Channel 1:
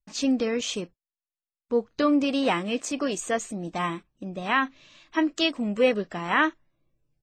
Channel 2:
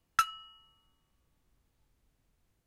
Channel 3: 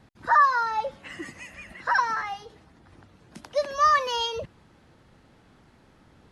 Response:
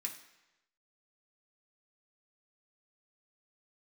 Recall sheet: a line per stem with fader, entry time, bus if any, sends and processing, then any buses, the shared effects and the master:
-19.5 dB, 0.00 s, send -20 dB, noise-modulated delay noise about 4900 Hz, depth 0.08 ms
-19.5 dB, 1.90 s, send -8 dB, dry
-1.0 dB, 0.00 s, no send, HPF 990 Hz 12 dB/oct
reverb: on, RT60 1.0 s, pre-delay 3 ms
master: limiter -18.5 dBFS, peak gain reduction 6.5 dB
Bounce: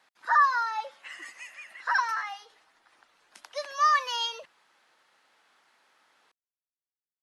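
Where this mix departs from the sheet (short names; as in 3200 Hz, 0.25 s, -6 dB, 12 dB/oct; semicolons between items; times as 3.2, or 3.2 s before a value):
stem 1: muted; master: missing limiter -18.5 dBFS, peak gain reduction 6.5 dB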